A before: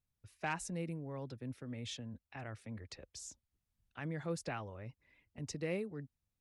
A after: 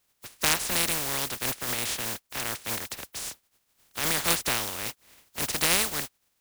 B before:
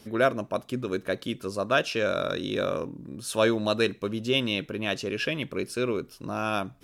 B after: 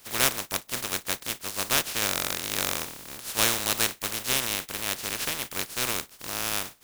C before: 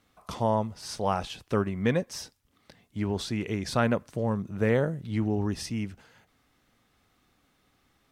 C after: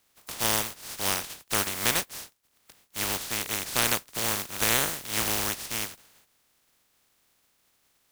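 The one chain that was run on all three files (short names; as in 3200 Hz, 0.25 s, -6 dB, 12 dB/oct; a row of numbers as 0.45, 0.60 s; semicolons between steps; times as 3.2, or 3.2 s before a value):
spectral contrast lowered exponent 0.16; match loudness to -27 LUFS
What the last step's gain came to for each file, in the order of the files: +14.0, -1.0, -0.5 dB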